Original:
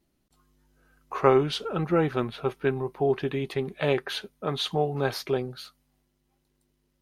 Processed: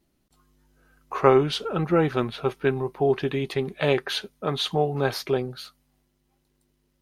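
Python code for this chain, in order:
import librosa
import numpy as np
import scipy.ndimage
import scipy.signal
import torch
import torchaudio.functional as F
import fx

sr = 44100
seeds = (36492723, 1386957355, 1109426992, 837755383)

y = fx.dynamic_eq(x, sr, hz=5400.0, q=0.72, threshold_db=-49.0, ratio=4.0, max_db=3, at=(2.04, 4.5))
y = y * librosa.db_to_amplitude(2.5)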